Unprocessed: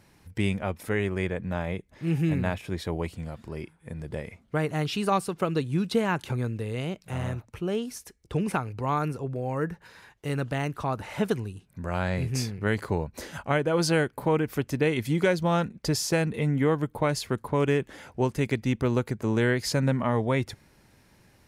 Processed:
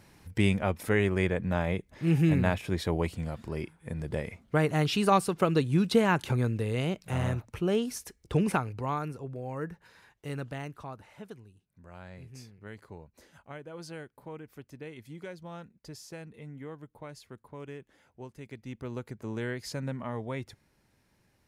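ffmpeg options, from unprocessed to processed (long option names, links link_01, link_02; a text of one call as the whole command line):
ffmpeg -i in.wav -af "volume=10dB,afade=type=out:start_time=8.38:duration=0.65:silence=0.375837,afade=type=out:start_time=10.34:duration=0.83:silence=0.251189,afade=type=in:start_time=18.44:duration=0.76:silence=0.375837" out.wav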